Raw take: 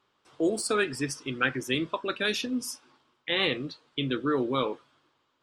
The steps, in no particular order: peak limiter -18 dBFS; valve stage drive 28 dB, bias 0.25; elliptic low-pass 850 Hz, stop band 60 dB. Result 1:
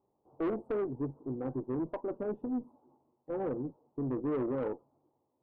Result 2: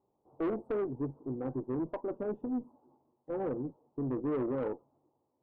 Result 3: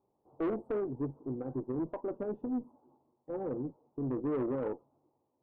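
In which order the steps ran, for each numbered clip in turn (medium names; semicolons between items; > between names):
elliptic low-pass > valve stage > peak limiter; elliptic low-pass > peak limiter > valve stage; peak limiter > elliptic low-pass > valve stage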